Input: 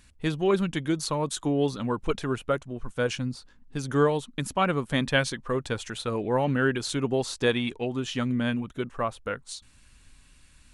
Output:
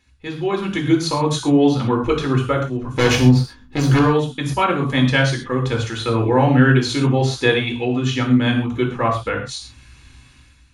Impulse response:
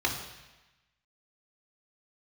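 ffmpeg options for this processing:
-filter_complex "[0:a]dynaudnorm=f=220:g=5:m=13dB,asettb=1/sr,asplit=3[a][b][c];[a]atrim=end=2.914[d];[b]atrim=start=2.91:end=3.99,asetpts=PTS-STARTPTS,afade=t=in:d=0.004:c=qsin,afade=t=out:st=1.076:d=0.004:c=qsin,aeval=exprs='0.668*(cos(1*acos(clip(val(0)/0.668,-1,1)))-cos(1*PI/2))+0.0841*(cos(5*acos(clip(val(0)/0.668,-1,1)))-cos(5*PI/2))+0.168*(cos(8*acos(clip(val(0)/0.668,-1,1)))-cos(8*PI/2))':c=same[e];[c]atrim=start=3.986[f];[d][e]acrossfade=d=0.004:c1=hsin:c2=qsin[g];[g][f]acrossfade=d=0.004:c1=qsin:c2=hsin[h];[1:a]atrim=start_sample=2205,atrim=end_sample=6174[i];[h][i]afir=irnorm=-1:irlink=0,volume=-10.5dB"

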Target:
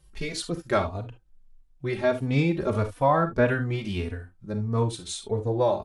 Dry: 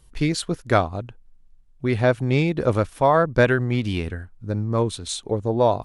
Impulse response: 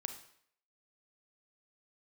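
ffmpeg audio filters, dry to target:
-filter_complex "[0:a]asettb=1/sr,asplit=3[a][b][c];[a]atrim=end=2.914[d];[b]atrim=start=2.91:end=3.46,asetpts=PTS-STARTPTS,afade=t=in:d=0.004:c=qsin,afade=t=out:st=0.546:d=0.004:c=qsin,acrossover=split=2600[e][f];[f]acompressor=threshold=-45dB:ratio=4:attack=1:release=60[g];[e][g]amix=inputs=2:normalize=0[h];[c]atrim=start=3.456[i];[d][h]acrossfade=d=0.004:c1=hsin:c2=qsin[j];[j][i]acrossfade=d=0.004:c1=qsin:c2=hsin[k];[1:a]atrim=start_sample=2205,atrim=end_sample=3528[l];[k][l]afir=irnorm=-1:irlink=0,asplit=2[m][n];[n]adelay=3.4,afreqshift=1.6[o];[m][o]amix=inputs=2:normalize=1"

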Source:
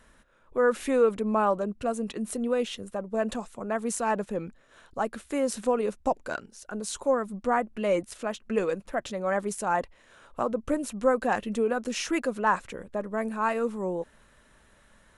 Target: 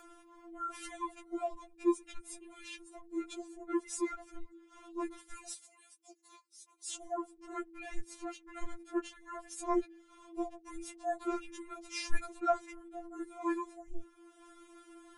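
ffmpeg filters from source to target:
-filter_complex "[0:a]afreqshift=-340,acompressor=mode=upward:threshold=-41dB:ratio=2.5,asettb=1/sr,asplit=3[a][b][c];[a]atrim=end=5.534[d];[b]atrim=start=5.53:end=6.89,asetpts=PTS-STARTPTS,afade=t=in:d=0.004:c=qsin,afade=t=out:st=1.356:d=0.004:c=qsin,aderivative[e];[c]atrim=start=6.886[f];[d][e]acrossfade=d=0.004:c1=hsin:c2=qsin[g];[g][f]acrossfade=d=0.004:c1=qsin:c2=hsin,afftfilt=real='re*4*eq(mod(b,16),0)':imag='im*4*eq(mod(b,16),0)':win_size=2048:overlap=0.75,volume=-5dB"

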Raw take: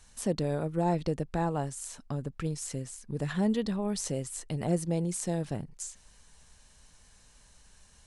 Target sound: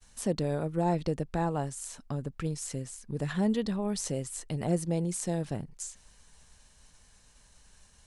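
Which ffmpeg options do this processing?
-af "agate=range=-33dB:threshold=-56dB:ratio=3:detection=peak"

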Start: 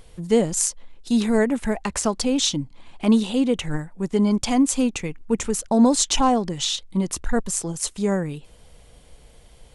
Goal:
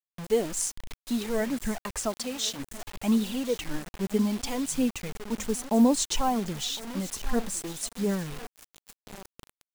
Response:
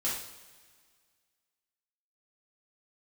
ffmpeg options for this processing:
-filter_complex "[0:a]asplit=2[a][b];[b]aecho=0:1:1058|2116|3174:0.15|0.0524|0.0183[c];[a][c]amix=inputs=2:normalize=0,flanger=delay=0.2:depth=5:regen=19:speed=0.62:shape=triangular,asplit=3[d][e][f];[d]afade=t=out:st=2.16:d=0.02[g];[e]highpass=f=610:p=1,afade=t=in:st=2.16:d=0.02,afade=t=out:st=2.58:d=0.02[h];[f]afade=t=in:st=2.58:d=0.02[i];[g][h][i]amix=inputs=3:normalize=0,acrusher=bits=5:mix=0:aa=0.000001,volume=-4dB"

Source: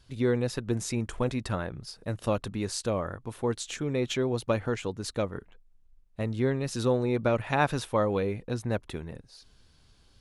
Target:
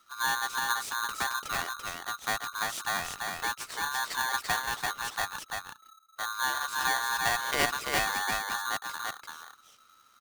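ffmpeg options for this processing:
-af "aecho=1:1:339:0.668,aeval=exprs='val(0)*sgn(sin(2*PI*1300*n/s))':c=same,volume=-4dB"

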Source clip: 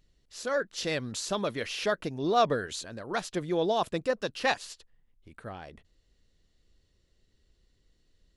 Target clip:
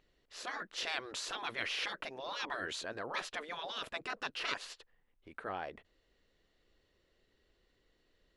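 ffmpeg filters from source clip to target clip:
-af "afftfilt=real='re*lt(hypot(re,im),0.0631)':imag='im*lt(hypot(re,im),0.0631)':win_size=1024:overlap=0.75,bass=f=250:g=-14,treble=f=4k:g=-14,volume=4.5dB"

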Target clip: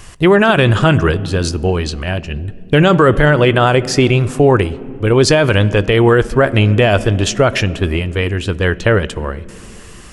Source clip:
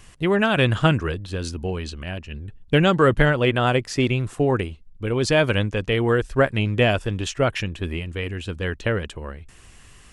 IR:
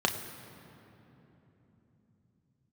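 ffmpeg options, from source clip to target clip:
-filter_complex "[0:a]asplit=2[a][b];[1:a]atrim=start_sample=2205,asetrate=70560,aresample=44100[c];[b][c]afir=irnorm=-1:irlink=0,volume=-18.5dB[d];[a][d]amix=inputs=2:normalize=0,alimiter=level_in=12dB:limit=-1dB:release=50:level=0:latency=1,volume=-1dB"

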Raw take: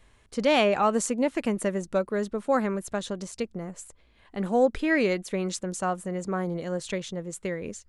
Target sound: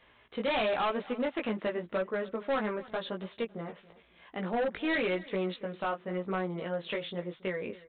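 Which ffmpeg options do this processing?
-filter_complex "[0:a]highpass=f=180:p=1,lowshelf=f=370:g=-6.5,asplit=2[a][b];[b]acompressor=threshold=-39dB:ratio=6,volume=2dB[c];[a][c]amix=inputs=2:normalize=0,flanger=delay=16:depth=2.7:speed=0.94,aresample=8000,asoftclip=type=hard:threshold=-26dB,aresample=44100,aecho=1:1:278|556:0.1|0.03"

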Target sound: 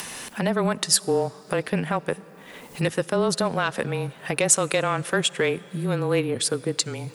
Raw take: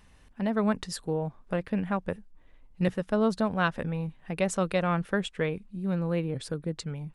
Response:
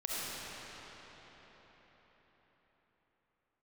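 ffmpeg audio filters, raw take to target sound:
-filter_complex "[0:a]highpass=270,alimiter=limit=-21dB:level=0:latency=1:release=48,afreqshift=-22,aeval=exprs='0.251*sin(PI/2*1.78*val(0)/0.251)':c=same,crystalizer=i=2.5:c=0,acompressor=mode=upward:threshold=-23dB:ratio=2.5,asplit=2[a][b];[1:a]atrim=start_sample=2205[c];[b][c]afir=irnorm=-1:irlink=0,volume=-25.5dB[d];[a][d]amix=inputs=2:normalize=0"

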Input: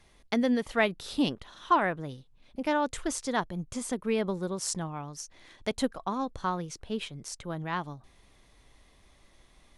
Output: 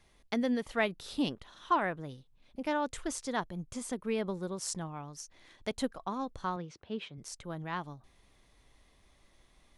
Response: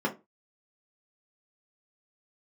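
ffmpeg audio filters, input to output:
-filter_complex "[0:a]asettb=1/sr,asplit=3[a][b][c];[a]atrim=end=6.564[d];[b]atrim=start=6.56:end=7.18,asetpts=PTS-STARTPTS,afade=t=in:d=0.004:c=qsin,afade=t=out:st=0.616:d=0.004:c=qsin,highpass=100,lowpass=3.7k[e];[c]atrim=start=7.176[f];[d][e]acrossfade=d=0.004:c1=hsin:c2=qsin[g];[g][f]acrossfade=d=0.004:c1=qsin:c2=hsin,volume=-4.5dB"

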